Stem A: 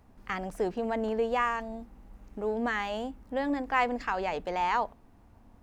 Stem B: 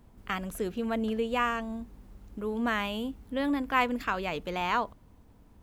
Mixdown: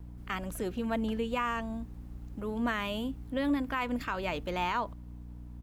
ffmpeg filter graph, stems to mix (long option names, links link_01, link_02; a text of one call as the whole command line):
ffmpeg -i stem1.wav -i stem2.wav -filter_complex "[0:a]volume=-13dB[link_01];[1:a]aeval=exprs='val(0)+0.00708*(sin(2*PI*60*n/s)+sin(2*PI*2*60*n/s)/2+sin(2*PI*3*60*n/s)/3+sin(2*PI*4*60*n/s)/4+sin(2*PI*5*60*n/s)/5)':channel_layout=same,adelay=2.9,volume=-1dB[link_02];[link_01][link_02]amix=inputs=2:normalize=0,alimiter=limit=-21dB:level=0:latency=1:release=129" out.wav